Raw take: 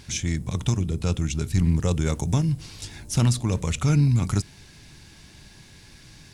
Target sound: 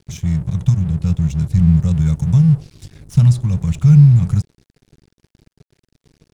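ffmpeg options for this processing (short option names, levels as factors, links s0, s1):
-af "lowshelf=f=220:t=q:w=3:g=11,aeval=exprs='sgn(val(0))*max(abs(val(0))-0.0251,0)':c=same,volume=0.531"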